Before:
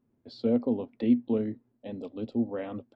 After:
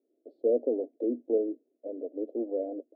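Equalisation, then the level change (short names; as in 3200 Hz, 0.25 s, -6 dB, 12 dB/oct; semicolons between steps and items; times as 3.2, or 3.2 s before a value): elliptic band-pass 300–660 Hz, stop band 40 dB; +4.5 dB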